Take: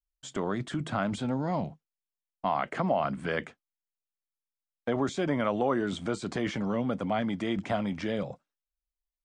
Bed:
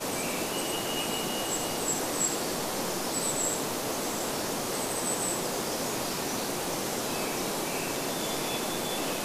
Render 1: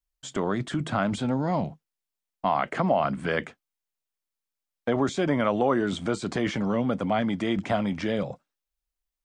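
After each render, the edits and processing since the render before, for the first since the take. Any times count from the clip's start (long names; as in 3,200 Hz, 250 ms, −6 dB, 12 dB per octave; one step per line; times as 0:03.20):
level +4 dB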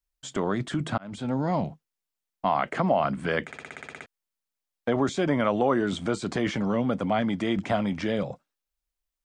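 0:00.98–0:01.39: fade in
0:03.46: stutter in place 0.06 s, 10 plays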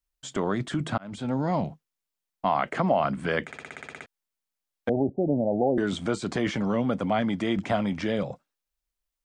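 0:04.89–0:05.78: Butterworth low-pass 820 Hz 96 dB per octave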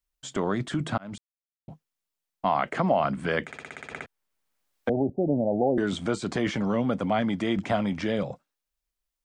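0:01.18–0:01.68: silence
0:03.91–0:05.12: multiband upward and downward compressor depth 40%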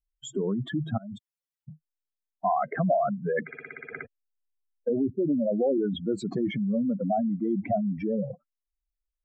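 expanding power law on the bin magnitudes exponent 3.4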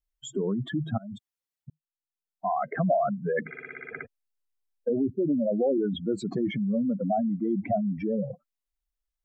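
0:01.70–0:02.80: fade in
0:03.41–0:03.91: double-tracking delay 44 ms −4.5 dB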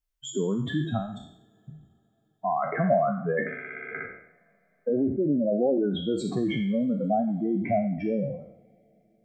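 peak hold with a decay on every bin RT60 0.62 s
coupled-rooms reverb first 0.39 s, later 4.4 s, from −20 dB, DRR 17.5 dB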